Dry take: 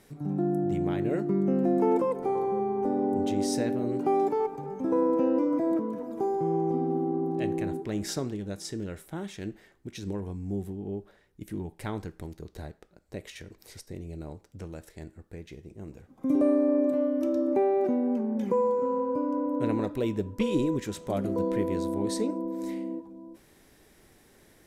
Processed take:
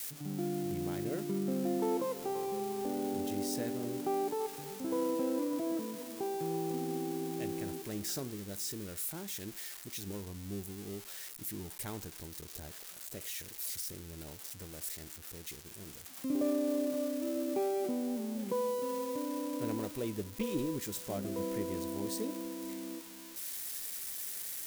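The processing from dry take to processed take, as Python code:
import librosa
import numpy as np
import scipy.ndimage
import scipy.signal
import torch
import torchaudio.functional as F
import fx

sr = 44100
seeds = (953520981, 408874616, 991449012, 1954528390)

y = x + 0.5 * 10.0 ** (-24.5 / 20.0) * np.diff(np.sign(x), prepend=np.sign(x[:1]))
y = y * 10.0 ** (-8.5 / 20.0)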